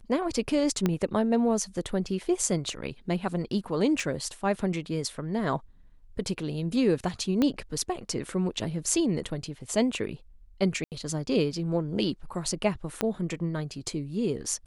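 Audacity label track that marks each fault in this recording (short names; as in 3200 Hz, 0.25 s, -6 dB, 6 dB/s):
0.860000	0.860000	pop -12 dBFS
4.000000	4.000000	gap 2.9 ms
7.420000	7.420000	pop -13 dBFS
10.840000	10.920000	gap 78 ms
13.010000	13.010000	pop -12 dBFS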